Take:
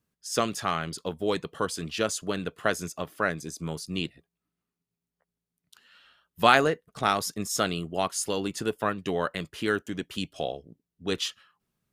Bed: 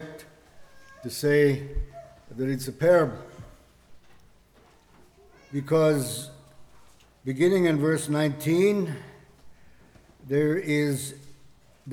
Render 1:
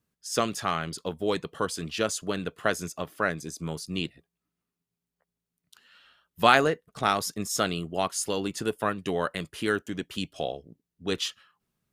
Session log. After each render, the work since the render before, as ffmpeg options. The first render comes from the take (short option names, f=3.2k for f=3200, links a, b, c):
-filter_complex "[0:a]asettb=1/sr,asplit=3[a][b][c];[a]atrim=end=8.654[d];[b]atrim=start=8.65:end=9.73,asetpts=PTS-STARTPTS,afade=t=in:d=0.004:c=qsin,afade=t=out:st=1.076:d=0.004:c=qsin,equalizer=f=9.9k:t=o:w=0.46:g=6[e];[c]atrim=start=9.726[f];[d][e]acrossfade=d=0.004:c1=hsin:c2=qsin[g];[g][f]acrossfade=d=0.004:c1=qsin:c2=hsin"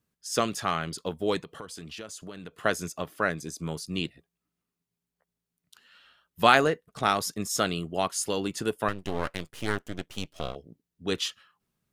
-filter_complex "[0:a]asettb=1/sr,asplit=3[a][b][c];[a]atrim=end=1.434[d];[b]atrim=start=1.43:end=2.54,asetpts=PTS-STARTPTS,afade=t=in:d=0.004:c=qsin,afade=t=out:st=1.106:d=0.004:c=qsin,acompressor=threshold=-38dB:ratio=5:attack=3.2:release=140:knee=1:detection=peak[e];[c]atrim=start=2.536[f];[d][e]acrossfade=d=0.004:c1=hsin:c2=qsin[g];[g][f]acrossfade=d=0.004:c1=qsin:c2=hsin,asettb=1/sr,asplit=3[h][i][j];[h]atrim=end=8.884[k];[i]atrim=start=8.88:end=10.56,asetpts=PTS-STARTPTS,afade=t=in:d=0.004:c=qsin,afade=t=out:st=1.676:d=0.004:c=qsin,aeval=exprs='max(val(0),0)':c=same[l];[j]atrim=start=10.556[m];[k][l]acrossfade=d=0.004:c1=hsin:c2=qsin[n];[n][m]acrossfade=d=0.004:c1=qsin:c2=hsin"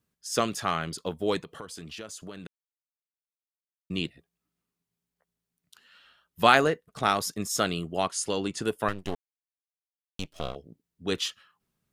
-filter_complex "[0:a]asettb=1/sr,asplit=3[a][b][c];[a]atrim=end=8.034[d];[b]atrim=start=8.03:end=8.62,asetpts=PTS-STARTPTS,afade=t=in:d=0.004:c=qsin,afade=t=out:st=0.586:d=0.004:c=qsin,lowpass=f=10k:w=0.5412,lowpass=f=10k:w=1.3066[e];[c]atrim=start=8.616[f];[d][e]acrossfade=d=0.004:c1=hsin:c2=qsin[g];[g][f]acrossfade=d=0.004:c1=qsin:c2=hsin,asplit=5[h][i][j][k][l];[h]atrim=end=2.47,asetpts=PTS-STARTPTS,afade=t=out:st=2.466:d=0.004:c=hsin[m];[i]atrim=start=2.47:end=3.9,asetpts=PTS-STARTPTS,volume=0[n];[j]atrim=start=3.9:end=9.15,asetpts=PTS-STARTPTS,afade=t=in:d=0.004:c=hsin,afade=t=out:st=5.246:d=0.004:c=hsin[o];[k]atrim=start=9.15:end=10.19,asetpts=PTS-STARTPTS,volume=0[p];[l]atrim=start=10.19,asetpts=PTS-STARTPTS,afade=t=in:d=0.004:c=hsin[q];[m][n][o][p][q]concat=n=5:v=0:a=1"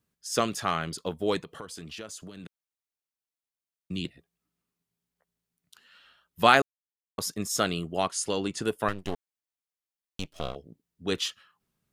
-filter_complex "[0:a]asettb=1/sr,asplit=3[a][b][c];[a]atrim=end=2.214[d];[b]atrim=start=2.21:end=4.05,asetpts=PTS-STARTPTS,afade=t=in:d=0.004:c=qsin,afade=t=out:st=1.836:d=0.004:c=qsin,acrossover=split=320|3000[e][f][g];[f]acompressor=threshold=-48dB:ratio=6:attack=3.2:release=140:knee=2.83:detection=peak[h];[e][h][g]amix=inputs=3:normalize=0[i];[c]atrim=start=4.046[j];[d][i]acrossfade=d=0.004:c1=hsin:c2=qsin[k];[k][j]acrossfade=d=0.004:c1=qsin:c2=hsin,asplit=3[l][m][n];[l]atrim=end=6.62,asetpts=PTS-STARTPTS,afade=t=out:st=6.616:d=0.004:c=hsin[o];[m]atrim=start=6.62:end=7.18,asetpts=PTS-STARTPTS,volume=0[p];[n]atrim=start=7.18,asetpts=PTS-STARTPTS,afade=t=in:d=0.004:c=hsin[q];[o][p][q]concat=n=3:v=0:a=1"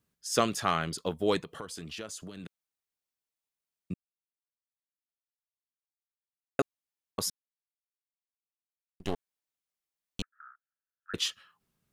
-filter_complex "[0:a]asettb=1/sr,asplit=3[a][b][c];[a]atrim=end=10.224[d];[b]atrim=start=10.22:end=11.14,asetpts=PTS-STARTPTS,afade=t=in:d=0.004:c=qsin,afade=t=out:st=0.916:d=0.004:c=qsin,asuperpass=centerf=1500:order=8:qfactor=3.3[e];[c]atrim=start=11.136[f];[d][e]acrossfade=d=0.004:c1=hsin:c2=qsin[g];[g][f]acrossfade=d=0.004:c1=qsin:c2=hsin,asplit=5[h][i][j][k][l];[h]atrim=end=3.94,asetpts=PTS-STARTPTS,afade=t=out:st=3.936:d=0.004:c=hsin[m];[i]atrim=start=3.94:end=6.59,asetpts=PTS-STARTPTS,volume=0[n];[j]atrim=start=6.59:end=7.3,asetpts=PTS-STARTPTS,afade=t=in:d=0.004:c=hsin,afade=t=out:st=0.706:d=0.004:c=hsin[o];[k]atrim=start=7.3:end=9,asetpts=PTS-STARTPTS,volume=0[p];[l]atrim=start=9,asetpts=PTS-STARTPTS,afade=t=in:d=0.004:c=hsin[q];[m][n][o][p][q]concat=n=5:v=0:a=1"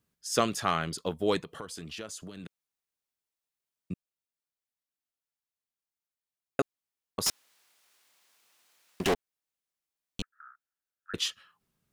-filter_complex "[0:a]asettb=1/sr,asplit=3[a][b][c];[a]atrim=end=7.264[d];[b]atrim=start=7.26:end=9.14,asetpts=PTS-STARTPTS,afade=t=in:d=0.004:c=qsin,afade=t=out:st=1.876:d=0.004:c=qsin,asplit=2[e][f];[f]highpass=f=720:p=1,volume=39dB,asoftclip=type=tanh:threshold=-16.5dB[g];[e][g]amix=inputs=2:normalize=0,lowpass=f=5.7k:p=1,volume=-6dB[h];[c]atrim=start=9.136[i];[d][h]acrossfade=d=0.004:c1=hsin:c2=qsin[j];[j][i]acrossfade=d=0.004:c1=qsin:c2=hsin"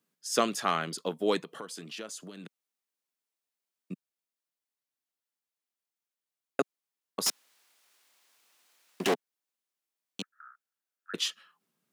-af "highpass=f=180:w=0.5412,highpass=f=180:w=1.3066"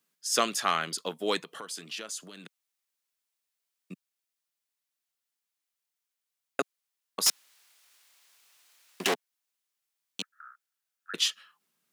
-af "tiltshelf=f=840:g=-5"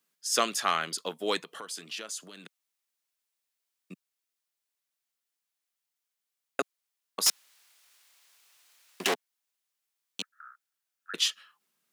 -af "lowshelf=f=160:g=-7"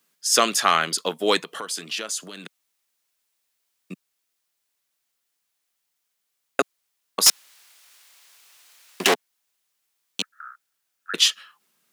-af "volume=9dB,alimiter=limit=-3dB:level=0:latency=1"